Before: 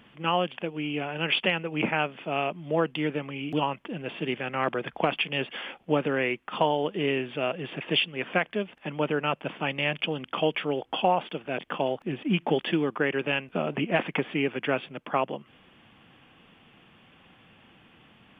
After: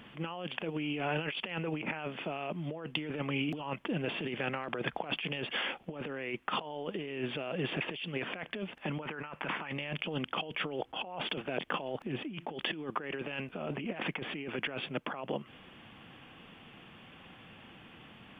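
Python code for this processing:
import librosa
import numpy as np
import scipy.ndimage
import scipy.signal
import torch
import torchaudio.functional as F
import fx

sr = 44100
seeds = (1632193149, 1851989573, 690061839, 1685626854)

y = fx.band_shelf(x, sr, hz=1400.0, db=8.5, octaves=1.7, at=(9.02, 9.73))
y = fx.band_squash(y, sr, depth_pct=70, at=(10.93, 11.41))
y = fx.over_compress(y, sr, threshold_db=-34.0, ratio=-1.0)
y = y * 10.0 ** (-3.0 / 20.0)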